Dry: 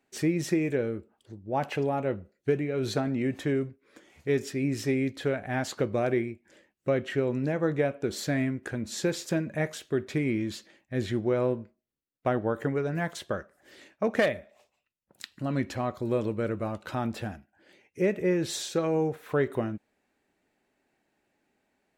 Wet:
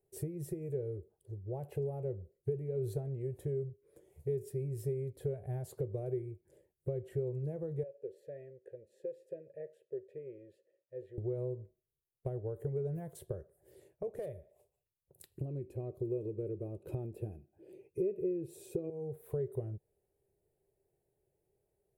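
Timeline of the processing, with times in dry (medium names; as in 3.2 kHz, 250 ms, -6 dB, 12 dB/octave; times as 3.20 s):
7.83–11.18 s: vowel filter e
15.38–18.90 s: small resonant body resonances 290/2500 Hz, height 17 dB, ringing for 20 ms
whole clip: treble shelf 3.1 kHz -11 dB; compression 4:1, threshold -34 dBFS; FFT filter 140 Hz 0 dB, 260 Hz -28 dB, 390 Hz -1 dB, 1.3 kHz -27 dB, 3 kHz -22 dB, 6.3 kHz -14 dB, 10 kHz +7 dB; trim +4 dB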